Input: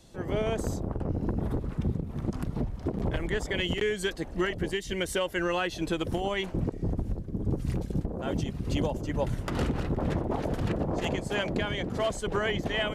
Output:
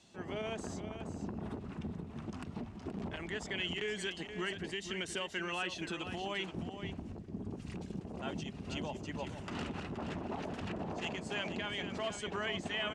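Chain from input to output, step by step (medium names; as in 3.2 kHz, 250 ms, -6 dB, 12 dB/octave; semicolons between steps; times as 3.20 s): peak limiter -23 dBFS, peak gain reduction 6 dB; cabinet simulation 120–8500 Hz, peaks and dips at 130 Hz -10 dB, 310 Hz -5 dB, 510 Hz -9 dB, 2.7 kHz +6 dB; on a send: delay 475 ms -9.5 dB; on the sum: trim -4.5 dB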